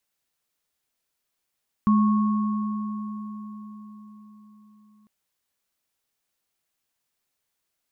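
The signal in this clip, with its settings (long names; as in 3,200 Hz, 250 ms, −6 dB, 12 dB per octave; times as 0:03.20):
inharmonic partials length 3.20 s, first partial 211 Hz, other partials 1,100 Hz, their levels −9 dB, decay 4.79 s, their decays 4.27 s, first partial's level −15 dB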